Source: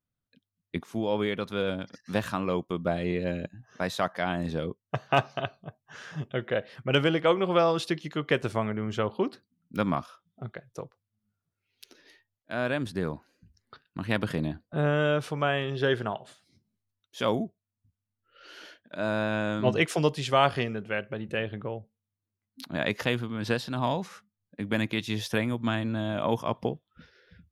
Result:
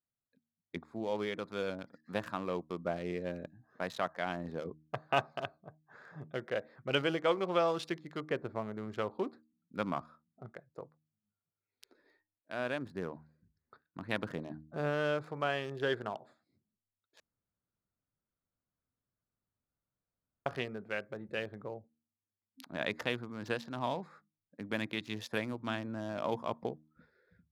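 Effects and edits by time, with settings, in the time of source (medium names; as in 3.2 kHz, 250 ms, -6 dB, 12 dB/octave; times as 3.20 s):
8.20–8.78 s: tape spacing loss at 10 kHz 29 dB
17.20–20.46 s: room tone
whole clip: local Wiener filter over 15 samples; bass shelf 180 Hz -10 dB; de-hum 77.33 Hz, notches 4; trim -5.5 dB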